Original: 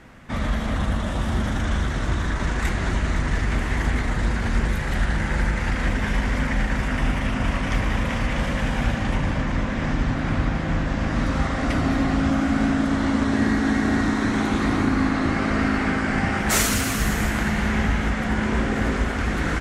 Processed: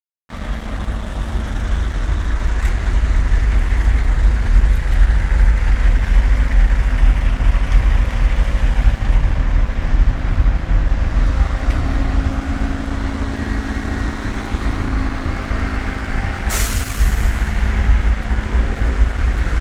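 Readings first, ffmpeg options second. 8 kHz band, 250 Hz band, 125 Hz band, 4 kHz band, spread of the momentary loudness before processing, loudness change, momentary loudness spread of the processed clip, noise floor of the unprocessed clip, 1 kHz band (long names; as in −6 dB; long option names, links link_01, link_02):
−1.0 dB, −4.5 dB, +6.5 dB, −0.5 dB, 4 LU, +4.0 dB, 7 LU, −26 dBFS, −1.0 dB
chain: -af "asubboost=boost=6:cutoff=74,aeval=exprs='sgn(val(0))*max(abs(val(0))-0.0299,0)':channel_layout=same"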